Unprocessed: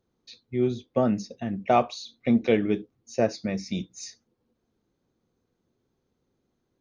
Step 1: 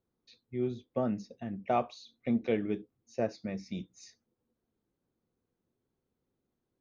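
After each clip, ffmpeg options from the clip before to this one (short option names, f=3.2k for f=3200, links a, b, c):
-af "highshelf=f=4.7k:g=-9.5,volume=-8dB"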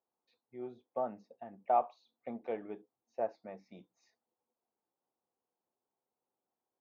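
-af "bandpass=f=830:t=q:w=2.8:csg=0,volume=4dB"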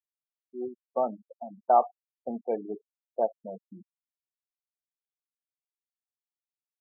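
-af "afftfilt=real='re*gte(hypot(re,im),0.0126)':imag='im*gte(hypot(re,im),0.0126)':win_size=1024:overlap=0.75,volume=8dB"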